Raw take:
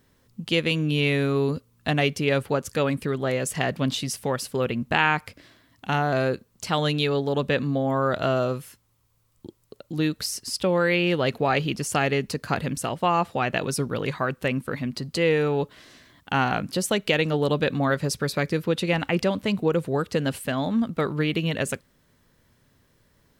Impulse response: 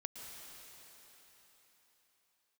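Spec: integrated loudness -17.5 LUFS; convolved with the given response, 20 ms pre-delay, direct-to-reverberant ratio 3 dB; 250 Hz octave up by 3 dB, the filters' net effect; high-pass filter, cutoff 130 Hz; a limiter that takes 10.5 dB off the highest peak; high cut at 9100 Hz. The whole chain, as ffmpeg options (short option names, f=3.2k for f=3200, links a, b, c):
-filter_complex "[0:a]highpass=130,lowpass=9.1k,equalizer=f=250:t=o:g=4.5,alimiter=limit=-15dB:level=0:latency=1,asplit=2[a][b];[1:a]atrim=start_sample=2205,adelay=20[c];[b][c]afir=irnorm=-1:irlink=0,volume=-1dB[d];[a][d]amix=inputs=2:normalize=0,volume=7dB"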